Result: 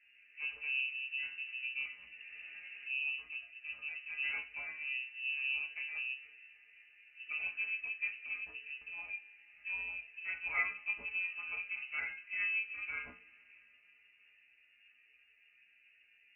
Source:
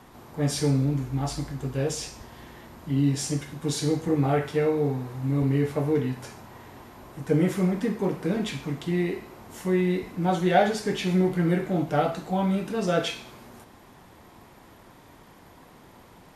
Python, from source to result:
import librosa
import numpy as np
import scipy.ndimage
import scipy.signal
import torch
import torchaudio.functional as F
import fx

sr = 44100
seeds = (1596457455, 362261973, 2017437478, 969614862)

y = fx.wiener(x, sr, points=25)
y = fx.resonator_bank(y, sr, root=48, chord='fifth', decay_s=0.22)
y = fx.freq_invert(y, sr, carrier_hz=2800)
y = fx.rev_double_slope(y, sr, seeds[0], early_s=0.22, late_s=5.0, knee_db=-22, drr_db=13.0)
y = fx.band_squash(y, sr, depth_pct=70, at=(0.8, 3.01))
y = y * 10.0 ** (-2.5 / 20.0)